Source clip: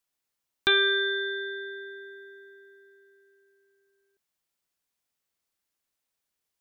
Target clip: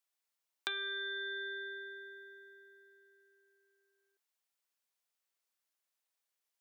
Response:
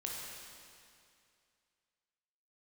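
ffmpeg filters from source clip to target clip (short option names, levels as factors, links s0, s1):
-af "highpass=490,acompressor=threshold=0.0251:ratio=6,volume=0.631"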